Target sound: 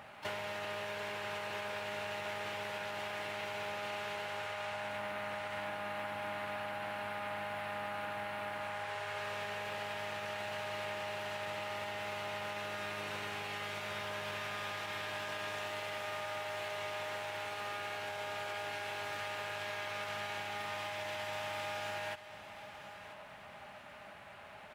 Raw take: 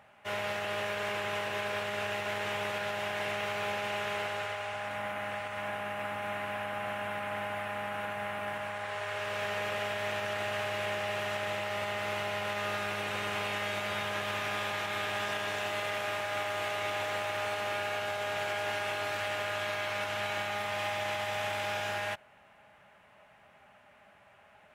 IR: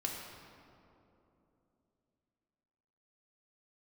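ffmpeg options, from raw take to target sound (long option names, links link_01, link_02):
-filter_complex "[0:a]acompressor=threshold=-44dB:ratio=20,aecho=1:1:989|1978|2967|3956:0.211|0.0803|0.0305|0.0116,asplit=2[link_01][link_02];[link_02]asetrate=66075,aresample=44100,atempo=0.66742,volume=-10dB[link_03];[link_01][link_03]amix=inputs=2:normalize=0,volume=6.5dB"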